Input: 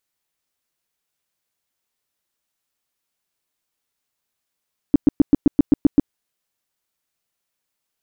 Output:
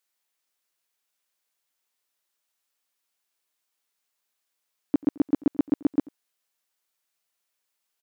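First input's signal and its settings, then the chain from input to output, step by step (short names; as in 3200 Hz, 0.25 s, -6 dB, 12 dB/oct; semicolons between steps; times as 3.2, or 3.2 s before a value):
tone bursts 288 Hz, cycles 5, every 0.13 s, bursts 9, -7 dBFS
HPF 550 Hz 6 dB/oct; echo 88 ms -23.5 dB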